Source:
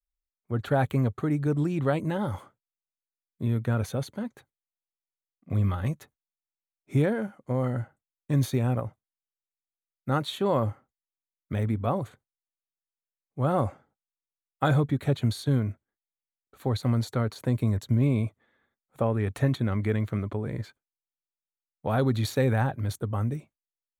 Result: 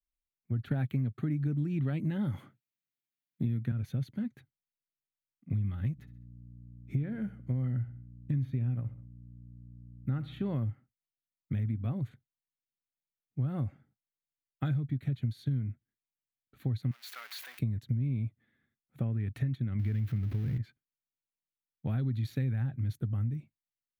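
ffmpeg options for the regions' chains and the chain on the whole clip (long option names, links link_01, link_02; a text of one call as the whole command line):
ffmpeg -i in.wav -filter_complex "[0:a]asettb=1/sr,asplit=3[link_01][link_02][link_03];[link_01]atrim=end=0.714[link_04];[link_02]atrim=start=0.71:end=3.72,asetpts=PTS-STARTPTS,afade=type=in:duration=0.004:curve=qsin,afade=type=out:start_time=3.006:duration=0.004:curve=qsin,highpass=140,bandreject=frequency=5000:width=15,acontrast=77[link_05];[link_03]atrim=start=3.716[link_06];[link_04][link_05]acrossfade=duration=0.004:curve1=hsin:curve2=qsin[link_07];[link_07][link_06]acrossfade=duration=0.004:curve1=qsin:curve2=hsin,asettb=1/sr,asplit=3[link_08][link_09][link_10];[link_08]atrim=end=5.924[link_11];[link_09]atrim=start=5.92:end=10.56,asetpts=PTS-STARTPTS,afade=type=in:duration=0.004:curve=qsin,afade=type=out:start_time=4.636:duration=0.004:curve=qsin,acrossover=split=2700[link_12][link_13];[link_13]acompressor=threshold=-53dB:ratio=4:attack=1:release=60[link_14];[link_12][link_14]amix=inputs=2:normalize=0,aeval=exprs='val(0)+0.00282*(sin(2*PI*60*n/s)+sin(2*PI*2*60*n/s)/2+sin(2*PI*3*60*n/s)/3+sin(2*PI*4*60*n/s)/4+sin(2*PI*5*60*n/s)/5)':channel_layout=same,aecho=1:1:67|134|201:0.126|0.0529|0.0222,atrim=end_sample=204624[link_15];[link_10]atrim=start=10.556[link_16];[link_11][link_15]acrossfade=duration=0.004:curve1=hsin:curve2=qsin[link_17];[link_17][link_16]acrossfade=duration=0.004:curve1=qsin:curve2=hsin,asettb=1/sr,asplit=3[link_18][link_19][link_20];[link_18]atrim=end=16.914[link_21];[link_19]atrim=start=16.91:end=17.59,asetpts=PTS-STARTPTS,afade=type=in:duration=0.004:curve=qsin,afade=type=out:start_time=0.676:duration=0.004:curve=qsin,aeval=exprs='val(0)+0.5*0.0299*sgn(val(0))':channel_layout=same,highpass=frequency=860:width=0.5412,highpass=frequency=860:width=1.3066[link_22];[link_20]atrim=start=17.586[link_23];[link_21][link_22]acrossfade=duration=0.004:curve1=hsin:curve2=qsin[link_24];[link_24][link_23]acrossfade=duration=0.004:curve1=qsin:curve2=hsin,asettb=1/sr,asplit=3[link_25][link_26][link_27];[link_25]atrim=end=19.794[link_28];[link_26]atrim=start=19.79:end=20.58,asetpts=PTS-STARTPTS,afade=type=in:duration=0.004:curve=qsin,afade=type=out:start_time=0.786:duration=0.004:curve=qsin,aeval=exprs='val(0)+0.5*0.0282*sgn(val(0))':channel_layout=same,equalizer=frequency=84:width_type=o:width=0.71:gain=7,bandreject=frequency=7400:width=27[link_29];[link_27]atrim=start=20.576[link_30];[link_28][link_29]acrossfade=duration=0.004:curve1=hsin:curve2=qsin[link_31];[link_31][link_30]acrossfade=duration=0.004:curve1=qsin:curve2=hsin,equalizer=frequency=125:width_type=o:width=1:gain=11,equalizer=frequency=250:width_type=o:width=1:gain=5,equalizer=frequency=500:width_type=o:width=1:gain=-8,equalizer=frequency=1000:width_type=o:width=1:gain=-11,equalizer=frequency=2000:width_type=o:width=1:gain=4,equalizer=frequency=8000:width_type=o:width=1:gain=-11,acompressor=threshold=-24dB:ratio=6,volume=-5dB" out.wav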